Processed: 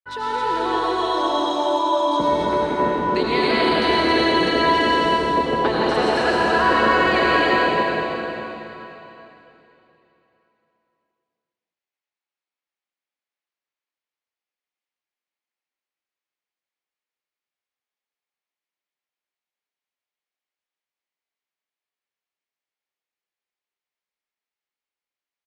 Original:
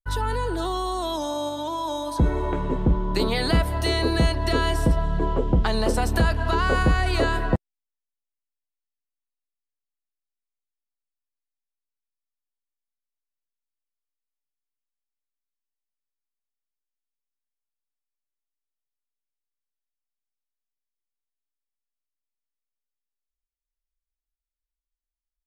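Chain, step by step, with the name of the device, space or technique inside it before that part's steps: station announcement (band-pass 310–4100 Hz; peaking EQ 2.2 kHz +4 dB 0.57 oct; loudspeakers at several distances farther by 75 m -9 dB, 92 m -3 dB; reverberation RT60 3.3 s, pre-delay 76 ms, DRR -4.5 dB)

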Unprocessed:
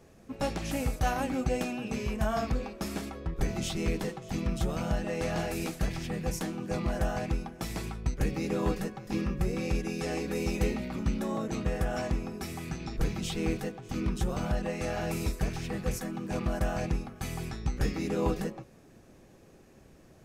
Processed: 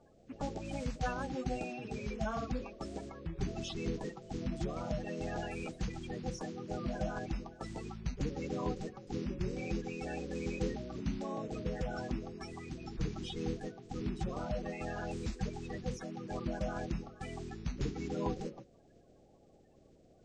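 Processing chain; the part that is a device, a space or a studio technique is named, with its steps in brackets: clip after many re-uploads (low-pass 6.6 kHz 24 dB/octave; coarse spectral quantiser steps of 30 dB); trim -6.5 dB

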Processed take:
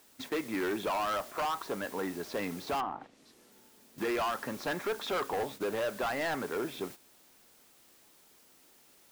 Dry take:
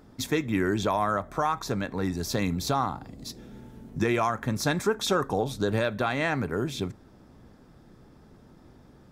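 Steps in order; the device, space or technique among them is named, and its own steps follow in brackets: aircraft radio (band-pass 380–2300 Hz; hard clipper -28.5 dBFS, distortion -7 dB; white noise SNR 15 dB; gate -44 dBFS, range -11 dB); 2.80–3.52 s: low-pass that closes with the level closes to 1.3 kHz, closed at -33 dBFS

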